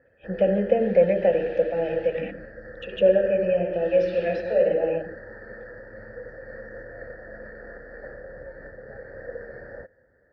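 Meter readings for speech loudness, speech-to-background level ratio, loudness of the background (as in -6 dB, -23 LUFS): -22.5 LUFS, 18.0 dB, -40.5 LUFS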